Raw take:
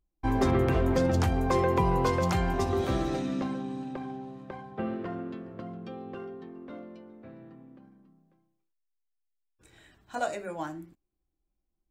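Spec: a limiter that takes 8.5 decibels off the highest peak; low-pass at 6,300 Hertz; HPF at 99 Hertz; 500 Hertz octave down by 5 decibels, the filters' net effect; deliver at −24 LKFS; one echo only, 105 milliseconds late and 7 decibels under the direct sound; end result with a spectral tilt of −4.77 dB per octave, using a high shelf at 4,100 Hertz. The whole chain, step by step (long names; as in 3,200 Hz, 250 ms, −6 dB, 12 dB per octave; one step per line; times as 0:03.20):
high-pass filter 99 Hz
low-pass filter 6,300 Hz
parametric band 500 Hz −6.5 dB
high-shelf EQ 4,100 Hz −3.5 dB
brickwall limiter −24 dBFS
single-tap delay 105 ms −7 dB
level +11.5 dB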